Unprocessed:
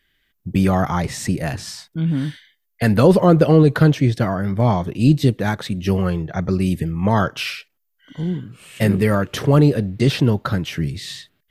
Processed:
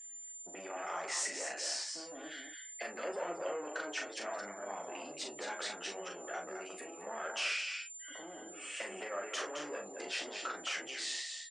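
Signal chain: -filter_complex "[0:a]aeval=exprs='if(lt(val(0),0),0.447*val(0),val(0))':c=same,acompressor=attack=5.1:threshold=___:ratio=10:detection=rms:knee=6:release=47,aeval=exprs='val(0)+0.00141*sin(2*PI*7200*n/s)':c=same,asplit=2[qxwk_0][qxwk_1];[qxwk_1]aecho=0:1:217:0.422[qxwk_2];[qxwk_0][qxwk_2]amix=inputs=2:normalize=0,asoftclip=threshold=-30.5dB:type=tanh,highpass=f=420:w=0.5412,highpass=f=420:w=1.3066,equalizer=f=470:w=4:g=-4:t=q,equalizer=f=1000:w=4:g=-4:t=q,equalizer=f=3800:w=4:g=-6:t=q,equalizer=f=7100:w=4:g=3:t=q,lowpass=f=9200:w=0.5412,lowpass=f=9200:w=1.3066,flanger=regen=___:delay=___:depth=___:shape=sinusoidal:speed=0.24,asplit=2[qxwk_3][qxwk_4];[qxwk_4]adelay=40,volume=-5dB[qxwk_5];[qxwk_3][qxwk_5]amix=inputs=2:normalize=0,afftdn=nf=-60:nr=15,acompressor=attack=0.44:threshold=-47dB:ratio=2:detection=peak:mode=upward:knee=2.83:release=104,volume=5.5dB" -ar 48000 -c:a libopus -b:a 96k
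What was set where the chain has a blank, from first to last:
-28dB, 44, 9.2, 6.9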